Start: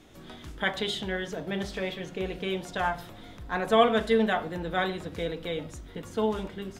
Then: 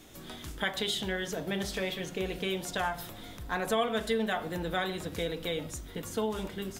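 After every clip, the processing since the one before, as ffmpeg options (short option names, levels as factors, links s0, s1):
-af "aemphasis=mode=production:type=50kf,acompressor=threshold=0.0355:ratio=2.5"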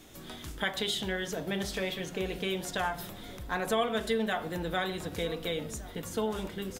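-filter_complex "[0:a]asplit=2[s0][s1];[s1]adelay=1516,volume=0.158,highshelf=f=4000:g=-34.1[s2];[s0][s2]amix=inputs=2:normalize=0"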